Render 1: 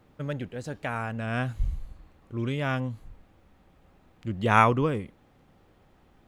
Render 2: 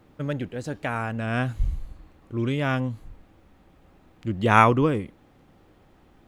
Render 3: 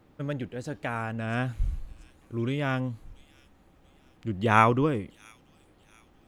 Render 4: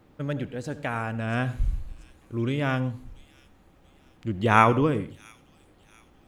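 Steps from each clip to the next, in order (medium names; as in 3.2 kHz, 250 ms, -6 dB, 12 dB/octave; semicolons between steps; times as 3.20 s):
peaking EQ 310 Hz +4 dB 0.45 oct; trim +3 dB
feedback echo behind a high-pass 685 ms, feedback 47%, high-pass 5.4 kHz, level -10 dB; trim -3.5 dB
reverberation RT60 0.35 s, pre-delay 66 ms, DRR 15.5 dB; trim +2 dB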